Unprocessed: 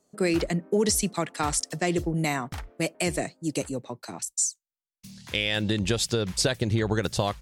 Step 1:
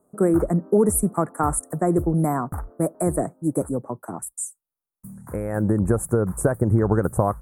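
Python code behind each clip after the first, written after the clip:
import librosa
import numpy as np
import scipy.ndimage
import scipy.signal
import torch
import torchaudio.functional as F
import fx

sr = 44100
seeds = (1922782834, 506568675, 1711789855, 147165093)

y = scipy.signal.sosfilt(scipy.signal.ellip(3, 1.0, 60, [1300.0, 9500.0], 'bandstop', fs=sr, output='sos'), x)
y = y * 10.0 ** (6.5 / 20.0)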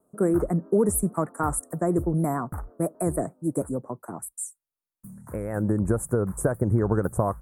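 y = fx.vibrato(x, sr, rate_hz=6.4, depth_cents=64.0)
y = fx.notch(y, sr, hz=800.0, q=19.0)
y = y * 10.0 ** (-3.5 / 20.0)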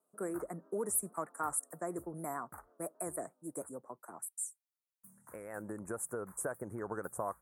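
y = fx.highpass(x, sr, hz=1200.0, slope=6)
y = y * 10.0 ** (-5.5 / 20.0)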